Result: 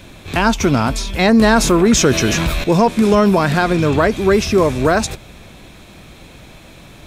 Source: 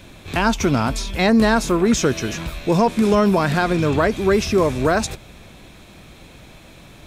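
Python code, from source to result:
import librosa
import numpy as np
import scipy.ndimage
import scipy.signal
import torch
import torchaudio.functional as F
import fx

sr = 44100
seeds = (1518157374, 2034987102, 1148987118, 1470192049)

y = fx.env_flatten(x, sr, amount_pct=50, at=(1.43, 2.64))
y = y * librosa.db_to_amplitude(3.5)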